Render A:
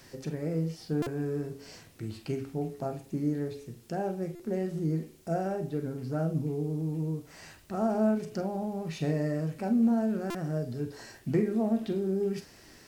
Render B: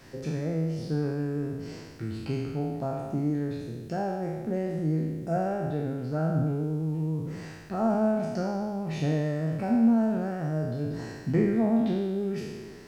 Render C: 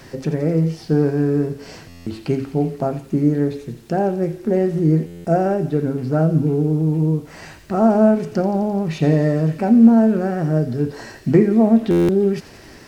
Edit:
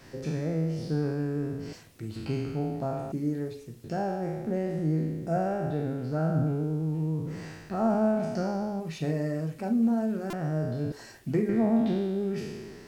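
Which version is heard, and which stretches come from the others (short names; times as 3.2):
B
1.73–2.16 from A
3.12–3.84 from A
8.8–10.33 from A
10.92–11.49 from A
not used: C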